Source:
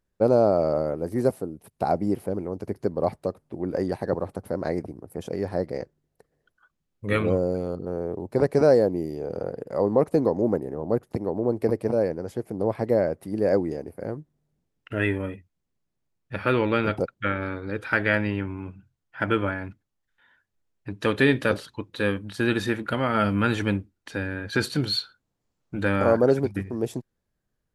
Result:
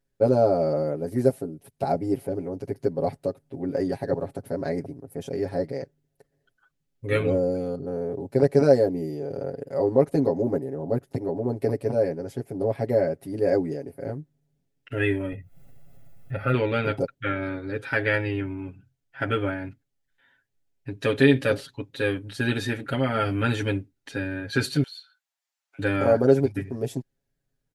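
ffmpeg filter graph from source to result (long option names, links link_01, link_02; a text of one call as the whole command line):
ffmpeg -i in.wav -filter_complex "[0:a]asettb=1/sr,asplit=3[link_01][link_02][link_03];[link_01]atrim=end=15.324[link_04];[link_02]atrim=start=15.32:end=16.54,asetpts=PTS-STARTPTS,afade=type=in:duration=0.004:curve=qsin,afade=type=out:start_time=1.216:duration=0.004:curve=qsin,equalizer=frequency=5000:width_type=o:width=2:gain=-13,aecho=1:1:1.5:0.62,atrim=end_sample=53802,acompressor=mode=upward:threshold=-27dB:ratio=2.5:attack=3.2:release=140:knee=2.83:detection=peak[link_05];[link_03]atrim=start=16.536[link_06];[link_04][link_05]acrossfade=duration=0.004:curve1=hsin:curve2=qsin[link_07];[link_07][link_06]acrossfade=duration=0.004:curve1=qsin:curve2=hsin,asettb=1/sr,asplit=3[link_08][link_09][link_10];[link_08]atrim=end=24.834[link_11];[link_09]atrim=start=24.83:end=25.79,asetpts=PTS-STARTPTS,afade=type=in:duration=0.004:curve=qsin,afade=type=out:start_time=0.956:duration=0.004:curve=qsin,highpass=frequency=900:width=0.5412,highpass=frequency=900:width=1.3066,acompressor=threshold=-53dB:ratio=2:attack=3.2:release=140:knee=1:detection=peak[link_12];[link_10]atrim=start=25.786[link_13];[link_11][link_12]acrossfade=duration=0.004:curve1=hsin:curve2=qsin[link_14];[link_14][link_13]acrossfade=duration=0.004:curve1=qsin:curve2=hsin,equalizer=frequency=1100:width=2.4:gain=-8,aecho=1:1:7.3:0.99,volume=-2.5dB" out.wav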